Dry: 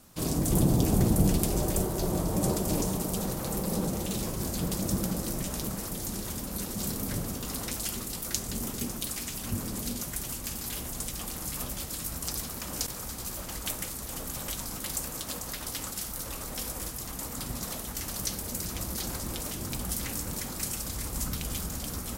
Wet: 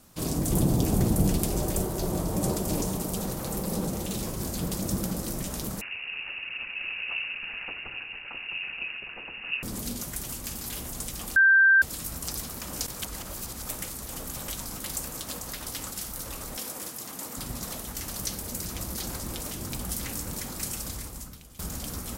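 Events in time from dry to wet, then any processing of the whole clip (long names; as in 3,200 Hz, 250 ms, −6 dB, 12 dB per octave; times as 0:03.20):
0:05.81–0:09.63: voice inversion scrambler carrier 2,800 Hz
0:11.36–0:11.82: beep over 1,570 Hz −14.5 dBFS
0:13.02–0:13.69: reverse
0:16.57–0:17.37: high-pass filter 190 Hz
0:20.90–0:21.59: fade out quadratic, to −18 dB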